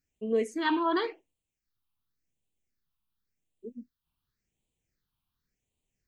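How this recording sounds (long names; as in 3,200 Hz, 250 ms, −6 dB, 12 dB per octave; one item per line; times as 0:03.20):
phaser sweep stages 6, 0.91 Hz, lowest notch 500–1,500 Hz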